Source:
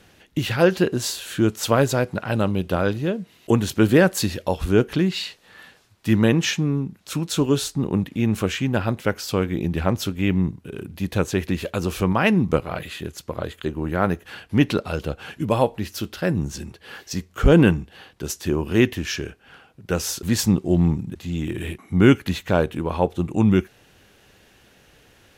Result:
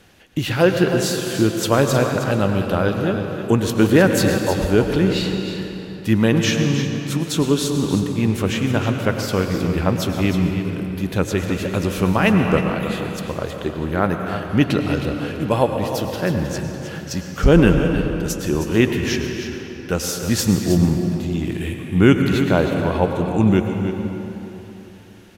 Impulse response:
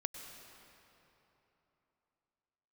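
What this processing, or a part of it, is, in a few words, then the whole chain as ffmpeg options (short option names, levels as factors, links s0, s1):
cave: -filter_complex "[0:a]aecho=1:1:314:0.316[s0];[1:a]atrim=start_sample=2205[s1];[s0][s1]afir=irnorm=-1:irlink=0,volume=1.41"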